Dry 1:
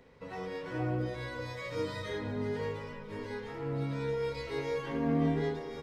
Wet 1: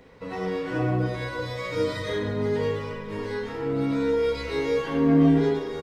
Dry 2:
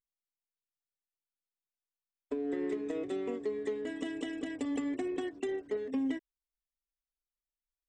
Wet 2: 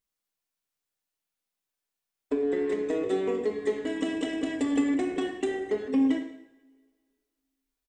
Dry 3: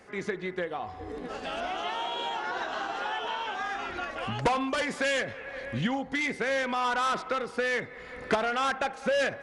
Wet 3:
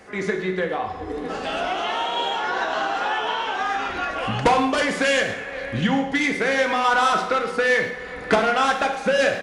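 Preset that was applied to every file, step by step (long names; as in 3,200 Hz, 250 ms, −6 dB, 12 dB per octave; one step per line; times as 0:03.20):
far-end echo of a speakerphone 110 ms, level −13 dB
coupled-rooms reverb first 0.72 s, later 2.1 s, from −23 dB, DRR 3.5 dB
level +6.5 dB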